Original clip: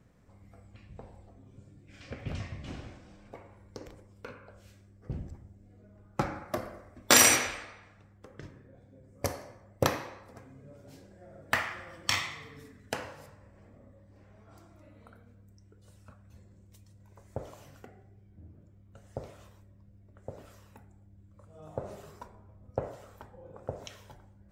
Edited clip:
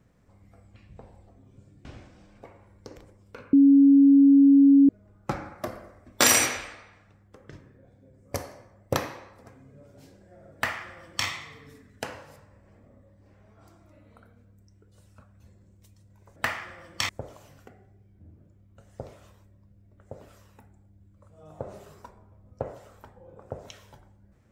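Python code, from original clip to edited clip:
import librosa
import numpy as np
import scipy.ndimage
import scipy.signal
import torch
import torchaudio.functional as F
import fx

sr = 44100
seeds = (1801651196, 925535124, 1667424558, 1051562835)

y = fx.edit(x, sr, fx.cut(start_s=1.85, length_s=0.9),
    fx.bleep(start_s=4.43, length_s=1.36, hz=278.0, db=-12.0),
    fx.duplicate(start_s=11.45, length_s=0.73, to_s=17.26), tone=tone)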